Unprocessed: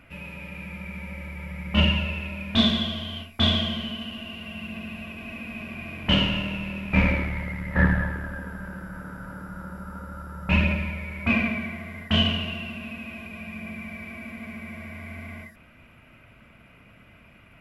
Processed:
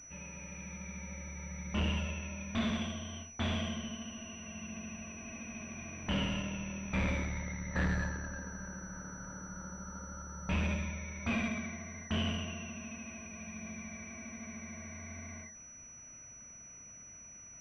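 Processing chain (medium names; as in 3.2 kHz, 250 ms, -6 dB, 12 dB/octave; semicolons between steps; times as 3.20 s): overload inside the chain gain 20 dB; class-D stage that switches slowly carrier 5.9 kHz; trim -8 dB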